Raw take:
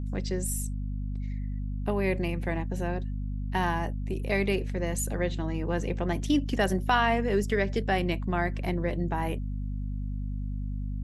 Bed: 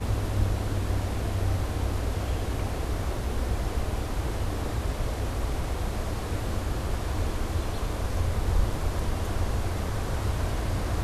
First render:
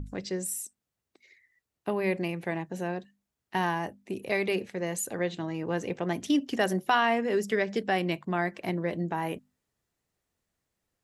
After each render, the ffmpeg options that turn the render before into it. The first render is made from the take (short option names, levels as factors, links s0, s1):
-af "bandreject=f=50:t=h:w=6,bandreject=f=100:t=h:w=6,bandreject=f=150:t=h:w=6,bandreject=f=200:t=h:w=6,bandreject=f=250:t=h:w=6"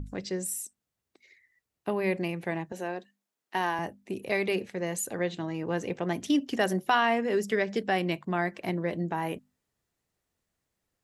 -filter_complex "[0:a]asettb=1/sr,asplit=3[s0][s1][s2];[s0]atrim=end=2.724[s3];[s1]atrim=start=2.72:end=3.79,asetpts=PTS-STARTPTS,afade=t=in:d=0.004:c=qsin,afade=t=out:st=1.066:d=0.004:c=qsin,highpass=290[s4];[s2]atrim=start=3.786[s5];[s3][s4]acrossfade=d=0.004:c1=hsin:c2=qsin[s6];[s6][s5]acrossfade=d=0.004:c1=qsin:c2=hsin"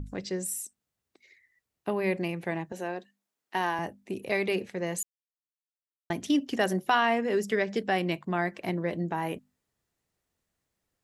-filter_complex "[0:a]asplit=3[s0][s1][s2];[s0]atrim=end=5.03,asetpts=PTS-STARTPTS,afade=t=out:st=5.026:d=0.004:c=hsin[s3];[s1]atrim=start=5.03:end=6.1,asetpts=PTS-STARTPTS,volume=0[s4];[s2]atrim=start=6.1,asetpts=PTS-STARTPTS,afade=t=in:d=0.004:c=hsin[s5];[s3][s4][s5]concat=n=3:v=0:a=1"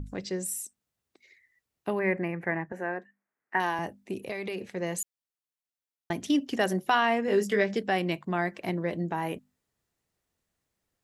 -filter_complex "[0:a]asettb=1/sr,asplit=3[s0][s1][s2];[s0]atrim=end=1.994[s3];[s1]atrim=start=1.99:end=3.6,asetpts=PTS-STARTPTS,afade=t=in:d=0.004:c=qsin,afade=t=out:st=1.606:d=0.004:c=qsin,highshelf=f=2600:t=q:w=3:g=-12[s4];[s2]atrim=start=3.596[s5];[s3][s4]acrossfade=d=0.004:c1=hsin:c2=qsin[s6];[s6][s5]acrossfade=d=0.004:c1=qsin:c2=hsin,asettb=1/sr,asplit=3[s7][s8][s9];[s7]atrim=end=4.224[s10];[s8]atrim=start=4.22:end=4.76,asetpts=PTS-STARTPTS,afade=t=in:d=0.004:c=qsin,afade=t=out:st=0.536:d=0.004:c=qsin,acompressor=threshold=0.0316:ratio=6:attack=3.2:release=140:knee=1:detection=peak[s11];[s9]atrim=start=4.756[s12];[s10][s11]acrossfade=d=0.004:c1=hsin:c2=qsin[s13];[s13][s12]acrossfade=d=0.004:c1=qsin:c2=hsin,asettb=1/sr,asplit=3[s14][s15][s16];[s14]atrim=end=7.264[s17];[s15]atrim=start=7.26:end=7.74,asetpts=PTS-STARTPTS,afade=t=in:d=0.004:c=qsin,afade=t=out:st=0.476:d=0.004:c=qsin,asplit=2[s18][s19];[s19]adelay=20,volume=0.631[s20];[s18][s20]amix=inputs=2:normalize=0,atrim=end_sample=21168[s21];[s16]atrim=start=7.736[s22];[s17][s21]acrossfade=d=0.004:c1=hsin:c2=qsin[s23];[s23][s22]acrossfade=d=0.004:c1=qsin:c2=hsin"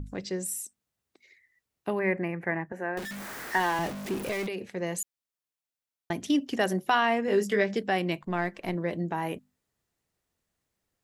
-filter_complex "[0:a]asettb=1/sr,asplit=3[s0][s1][s2];[s0]atrim=end=2.974[s3];[s1]atrim=start=2.97:end=4.47,asetpts=PTS-STARTPTS,afade=t=in:d=0.004:c=qsin,afade=t=out:st=1.496:d=0.004:c=qsin,aeval=exprs='val(0)+0.5*0.0251*sgn(val(0))':c=same[s4];[s2]atrim=start=4.466[s5];[s3][s4]acrossfade=d=0.004:c1=hsin:c2=qsin[s6];[s6][s5]acrossfade=d=0.004:c1=qsin:c2=hsin,asettb=1/sr,asplit=3[s7][s8][s9];[s7]atrim=end=8.224[s10];[s8]atrim=start=8.22:end=8.75,asetpts=PTS-STARTPTS,afade=t=in:d=0.004:c=qsin,afade=t=out:st=0.526:d=0.004:c=qsin,aeval=exprs='if(lt(val(0),0),0.708*val(0),val(0))':c=same[s11];[s9]atrim=start=8.746[s12];[s10][s11]acrossfade=d=0.004:c1=hsin:c2=qsin[s13];[s13][s12]acrossfade=d=0.004:c1=qsin:c2=hsin"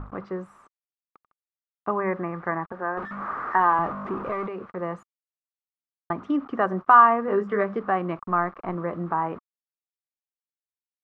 -af "acrusher=bits=7:mix=0:aa=0.000001,lowpass=f=1200:t=q:w=8.1"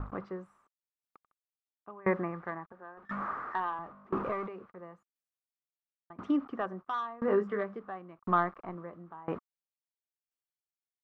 -af "asoftclip=type=tanh:threshold=0.398,aeval=exprs='val(0)*pow(10,-25*if(lt(mod(0.97*n/s,1),2*abs(0.97)/1000),1-mod(0.97*n/s,1)/(2*abs(0.97)/1000),(mod(0.97*n/s,1)-2*abs(0.97)/1000)/(1-2*abs(0.97)/1000))/20)':c=same"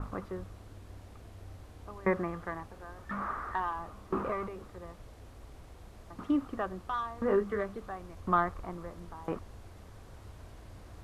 -filter_complex "[1:a]volume=0.0841[s0];[0:a][s0]amix=inputs=2:normalize=0"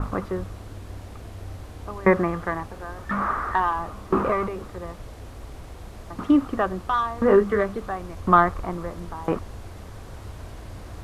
-af "volume=3.55"